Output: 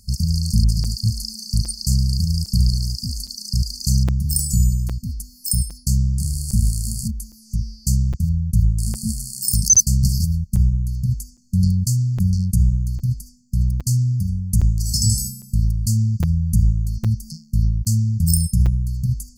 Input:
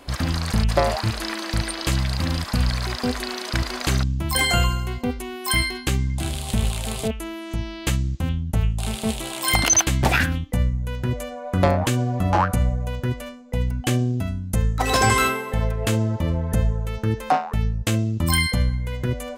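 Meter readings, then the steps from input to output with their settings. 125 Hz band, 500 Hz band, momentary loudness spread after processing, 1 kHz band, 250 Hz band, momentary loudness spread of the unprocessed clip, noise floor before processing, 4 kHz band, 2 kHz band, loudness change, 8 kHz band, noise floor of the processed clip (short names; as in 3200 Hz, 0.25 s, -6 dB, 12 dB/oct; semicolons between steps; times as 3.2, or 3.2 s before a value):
+5.0 dB, under -20 dB, 7 LU, under -25 dB, +0.5 dB, 8 LU, -35 dBFS, -2.5 dB, under -25 dB, +2.5 dB, +5.0 dB, -48 dBFS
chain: brick-wall FIR band-stop 220–4300 Hz; crackling interface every 0.81 s, samples 256, zero, from 0.84; gain +5 dB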